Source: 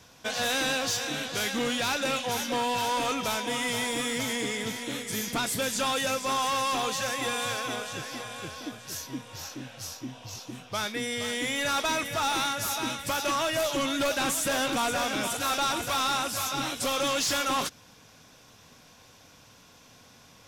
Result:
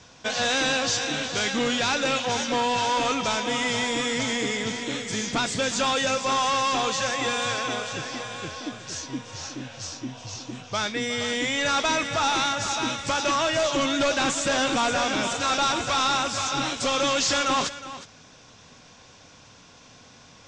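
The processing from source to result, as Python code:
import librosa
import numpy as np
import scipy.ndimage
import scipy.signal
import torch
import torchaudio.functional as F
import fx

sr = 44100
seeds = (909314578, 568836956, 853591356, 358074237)

p1 = scipy.signal.sosfilt(scipy.signal.butter(8, 7700.0, 'lowpass', fs=sr, output='sos'), x)
p2 = p1 + fx.echo_single(p1, sr, ms=363, db=-14.5, dry=0)
y = p2 * librosa.db_to_amplitude(4.0)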